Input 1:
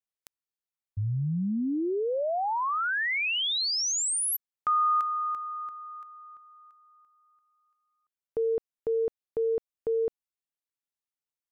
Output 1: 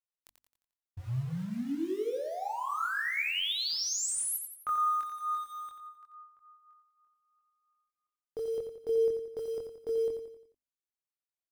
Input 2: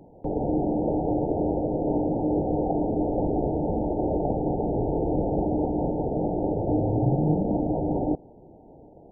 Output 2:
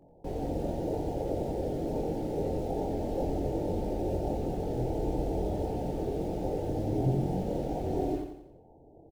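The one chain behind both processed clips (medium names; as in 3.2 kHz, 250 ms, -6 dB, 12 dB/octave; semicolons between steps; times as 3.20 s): hum notches 50/100/150/200/250/300 Hz; dynamic bell 770 Hz, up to -3 dB, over -44 dBFS, Q 1.6; in parallel at -10 dB: bit crusher 6-bit; on the sum: chorus voices 6, 0.26 Hz, delay 23 ms, depth 2 ms; feedback delay 88 ms, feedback 46%, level -7 dB; trim -5 dB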